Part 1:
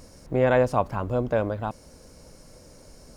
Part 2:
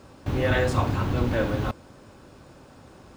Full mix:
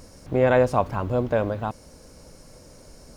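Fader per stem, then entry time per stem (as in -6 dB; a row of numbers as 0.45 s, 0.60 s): +1.5 dB, -15.0 dB; 0.00 s, 0.00 s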